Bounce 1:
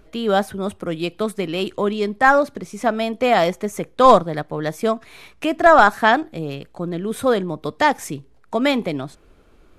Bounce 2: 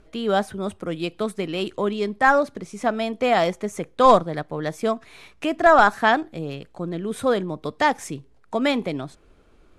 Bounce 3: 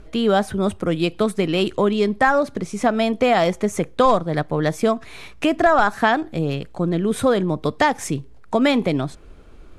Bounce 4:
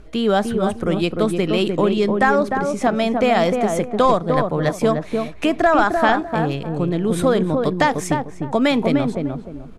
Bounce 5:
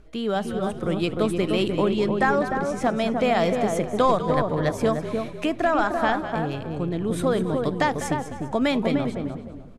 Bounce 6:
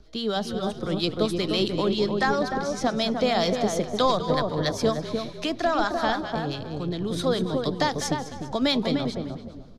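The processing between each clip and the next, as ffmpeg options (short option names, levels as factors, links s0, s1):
-af "lowpass=f=11000:w=0.5412,lowpass=f=11000:w=1.3066,volume=0.708"
-af "lowshelf=f=140:g=6.5,acompressor=threshold=0.1:ratio=4,volume=2.11"
-filter_complex "[0:a]asplit=2[s0][s1];[s1]adelay=302,lowpass=f=910:p=1,volume=0.708,asplit=2[s2][s3];[s3]adelay=302,lowpass=f=910:p=1,volume=0.31,asplit=2[s4][s5];[s5]adelay=302,lowpass=f=910:p=1,volume=0.31,asplit=2[s6][s7];[s7]adelay=302,lowpass=f=910:p=1,volume=0.31[s8];[s0][s2][s4][s6][s8]amix=inputs=5:normalize=0"
-filter_complex "[0:a]dynaudnorm=f=220:g=9:m=3.76,asplit=4[s0][s1][s2][s3];[s1]adelay=199,afreqshift=-51,volume=0.266[s4];[s2]adelay=398,afreqshift=-102,volume=0.0794[s5];[s3]adelay=597,afreqshift=-153,volume=0.024[s6];[s0][s4][s5][s6]amix=inputs=4:normalize=0,volume=0.398"
-filter_complex "[0:a]acrossover=split=930[s0][s1];[s0]aeval=exprs='val(0)*(1-0.5/2+0.5/2*cos(2*PI*7.4*n/s))':c=same[s2];[s1]aeval=exprs='val(0)*(1-0.5/2-0.5/2*cos(2*PI*7.4*n/s))':c=same[s3];[s2][s3]amix=inputs=2:normalize=0,acrossover=split=290|520|5300[s4][s5][s6][s7];[s6]aexciter=amount=5.7:drive=8.4:freq=3800[s8];[s4][s5][s8][s7]amix=inputs=4:normalize=0"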